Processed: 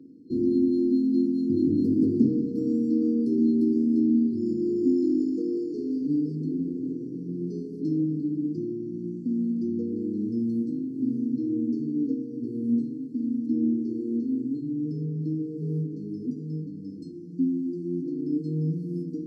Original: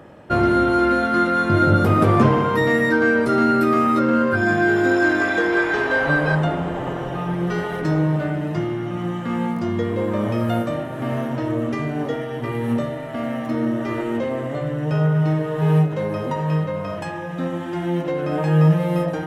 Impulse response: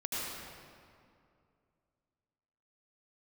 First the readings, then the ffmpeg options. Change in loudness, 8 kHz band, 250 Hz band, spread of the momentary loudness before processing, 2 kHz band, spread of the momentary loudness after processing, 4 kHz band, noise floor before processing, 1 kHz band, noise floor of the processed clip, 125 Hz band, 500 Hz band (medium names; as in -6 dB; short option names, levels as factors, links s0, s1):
-6.5 dB, no reading, -2.0 dB, 10 LU, under -40 dB, 10 LU, under -20 dB, -29 dBFS, under -40 dB, -38 dBFS, -13.0 dB, -11.0 dB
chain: -filter_complex "[0:a]afftfilt=real='re*(1-between(b*sr/4096,500,4200))':imag='im*(1-between(b*sr/4096,500,4200))':win_size=4096:overlap=0.75,acontrast=34,asplit=3[s0][s1][s2];[s0]bandpass=f=270:t=q:w=8,volume=1[s3];[s1]bandpass=f=2290:t=q:w=8,volume=0.501[s4];[s2]bandpass=f=3010:t=q:w=8,volume=0.355[s5];[s3][s4][s5]amix=inputs=3:normalize=0,volume=1.19"